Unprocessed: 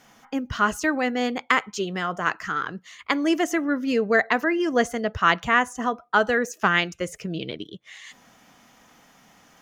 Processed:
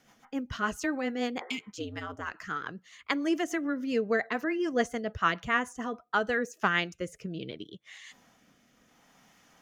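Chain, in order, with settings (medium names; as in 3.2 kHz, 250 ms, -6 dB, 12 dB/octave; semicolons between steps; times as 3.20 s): 1.43–1.67 s: spectral replace 340–2100 Hz both; 1.76–2.34 s: ring modulator 82 Hz; rotary cabinet horn 7 Hz, later 0.7 Hz, at 5.88 s; trim -5 dB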